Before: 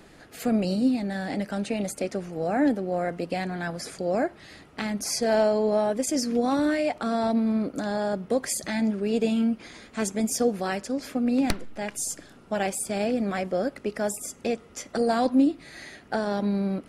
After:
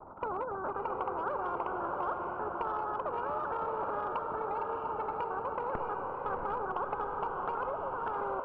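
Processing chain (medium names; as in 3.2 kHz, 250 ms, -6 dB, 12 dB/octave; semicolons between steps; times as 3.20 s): chunks repeated in reverse 677 ms, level -13 dB; steep low-pass 700 Hz 96 dB/octave; expander -45 dBFS; peaking EQ 450 Hz +14.5 dB 0.42 oct; compression 5:1, threshold -23 dBFS, peak gain reduction 14 dB; echo that smears into a reverb 1339 ms, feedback 44%, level -5 dB; speed mistake 7.5 ips tape played at 15 ips; spectrum-flattening compressor 2:1; trim -8.5 dB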